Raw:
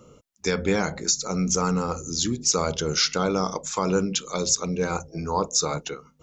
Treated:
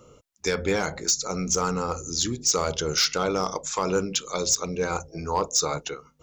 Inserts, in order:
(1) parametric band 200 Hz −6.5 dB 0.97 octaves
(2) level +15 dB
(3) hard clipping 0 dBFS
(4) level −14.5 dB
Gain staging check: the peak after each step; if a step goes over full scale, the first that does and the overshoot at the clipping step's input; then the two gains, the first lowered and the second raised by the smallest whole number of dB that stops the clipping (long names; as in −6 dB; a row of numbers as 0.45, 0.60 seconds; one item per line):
−8.5, +6.5, 0.0, −14.5 dBFS
step 2, 6.5 dB
step 2 +8 dB, step 4 −7.5 dB